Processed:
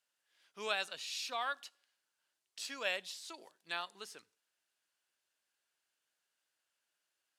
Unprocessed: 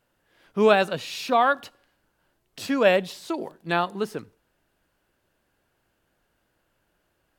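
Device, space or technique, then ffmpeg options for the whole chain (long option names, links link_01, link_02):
piezo pickup straight into a mixer: -af "lowpass=7200,aderivative,volume=-1dB"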